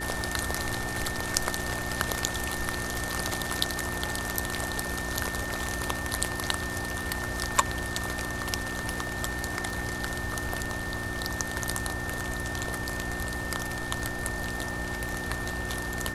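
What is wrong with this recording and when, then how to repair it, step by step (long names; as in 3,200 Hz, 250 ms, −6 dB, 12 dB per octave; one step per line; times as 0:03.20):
surface crackle 54 per second −38 dBFS
mains hum 60 Hz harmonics 6 −38 dBFS
whistle 1,800 Hz −35 dBFS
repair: click removal
hum removal 60 Hz, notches 6
notch filter 1,800 Hz, Q 30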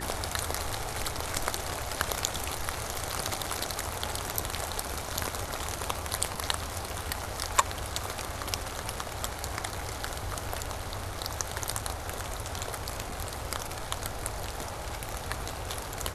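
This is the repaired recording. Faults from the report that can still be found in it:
none of them is left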